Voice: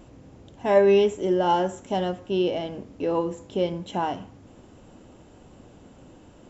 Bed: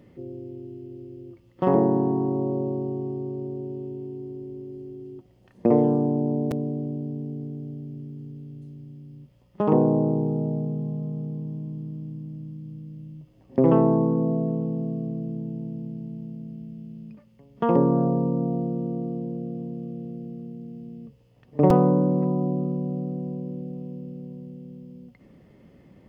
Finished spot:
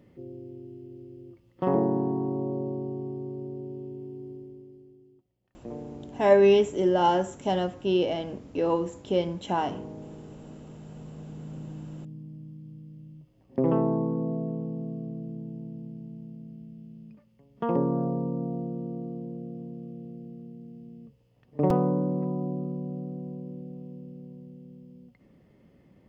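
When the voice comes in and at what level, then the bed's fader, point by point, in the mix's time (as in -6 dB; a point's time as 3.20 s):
5.55 s, -0.5 dB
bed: 4.32 s -4.5 dB
5.26 s -20.5 dB
10.53 s -20.5 dB
11.60 s -6 dB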